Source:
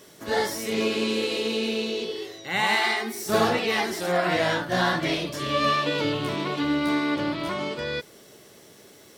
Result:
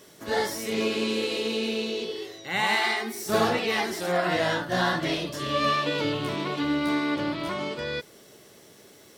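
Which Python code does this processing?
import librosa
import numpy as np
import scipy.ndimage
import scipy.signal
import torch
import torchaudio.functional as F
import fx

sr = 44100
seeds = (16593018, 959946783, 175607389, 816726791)

y = fx.notch(x, sr, hz=2300.0, q=14.0, at=(4.21, 5.56))
y = y * librosa.db_to_amplitude(-1.5)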